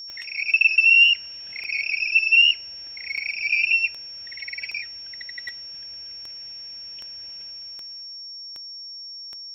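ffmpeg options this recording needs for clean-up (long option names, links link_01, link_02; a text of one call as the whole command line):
ffmpeg -i in.wav -af "adeclick=threshold=4,bandreject=frequency=5500:width=30" out.wav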